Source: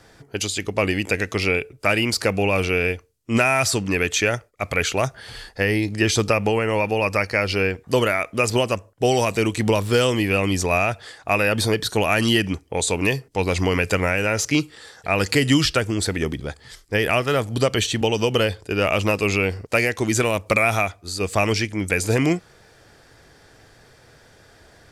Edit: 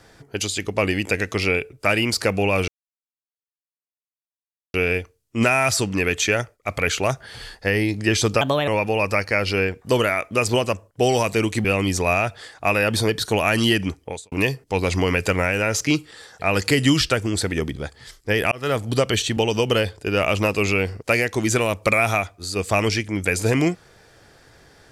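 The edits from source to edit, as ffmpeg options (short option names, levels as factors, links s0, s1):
-filter_complex "[0:a]asplit=7[s0][s1][s2][s3][s4][s5][s6];[s0]atrim=end=2.68,asetpts=PTS-STARTPTS,afade=t=out:st=2.676:d=0.004:c=hsin,apad=pad_dur=2.06[s7];[s1]atrim=start=2.68:end=6.354,asetpts=PTS-STARTPTS,afade=t=in:d=0.004:c=hsin[s8];[s2]atrim=start=6.35:end=6.7,asetpts=PTS-STARTPTS,asetrate=57771,aresample=44100,atrim=end_sample=11782,asetpts=PTS-STARTPTS[s9];[s3]atrim=start=6.696:end=9.672[s10];[s4]atrim=start=10.288:end=12.96,asetpts=PTS-STARTPTS,afade=t=out:st=2.392:d=0.28:c=qua[s11];[s5]atrim=start=12.96:end=17.16,asetpts=PTS-STARTPTS,afade=t=in:d=0.004:c=hsin,afade=t=out:st=4.196:d=0.004:c=hsin[s12];[s6]atrim=start=17.16,asetpts=PTS-STARTPTS,afade=t=in:d=0.3:c=qsin[s13];[s7][s8]concat=n=2:v=0:a=1[s14];[s14][s9]acrossfade=d=0.004:c1=hsin:c2=hsin[s15];[s15][s10]acrossfade=d=0.004:c1=hsin:c2=hsin[s16];[s11][s12][s13]concat=n=3:v=0:a=1[s17];[s16][s17]acrossfade=d=0.004:c1=hsin:c2=hsin"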